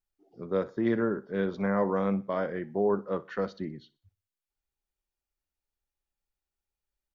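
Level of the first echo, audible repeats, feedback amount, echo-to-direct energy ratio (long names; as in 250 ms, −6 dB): −20.0 dB, 2, 35%, −19.5 dB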